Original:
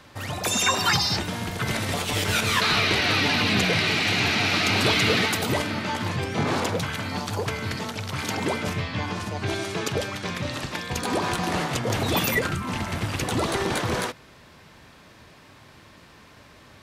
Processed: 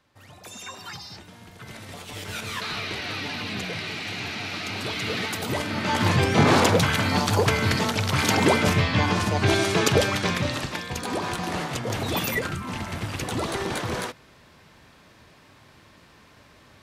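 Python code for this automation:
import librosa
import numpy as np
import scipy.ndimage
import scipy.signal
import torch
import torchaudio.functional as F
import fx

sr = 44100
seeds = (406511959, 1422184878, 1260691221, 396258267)

y = fx.gain(x, sr, db=fx.line((1.36, -17.0), (2.43, -9.5), (4.9, -9.5), (5.67, -1.5), (6.07, 7.0), (10.18, 7.0), (10.99, -3.0)))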